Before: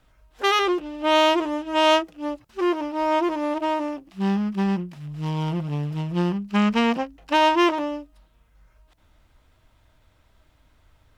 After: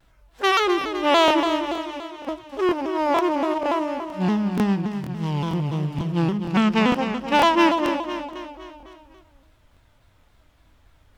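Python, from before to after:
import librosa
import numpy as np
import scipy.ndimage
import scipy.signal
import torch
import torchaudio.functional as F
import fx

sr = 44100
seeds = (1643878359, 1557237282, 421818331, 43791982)

p1 = fx.tone_stack(x, sr, knobs='10-0-1', at=(1.72, 2.26), fade=0.02)
p2 = p1 + fx.echo_feedback(p1, sr, ms=254, feedback_pct=53, wet_db=-8.5, dry=0)
p3 = fx.buffer_crackle(p2, sr, first_s=0.79, period_s=0.47, block=1024, kind='repeat')
p4 = fx.vibrato_shape(p3, sr, shape='saw_down', rate_hz=3.5, depth_cents=160.0)
y = p4 * 10.0 ** (1.0 / 20.0)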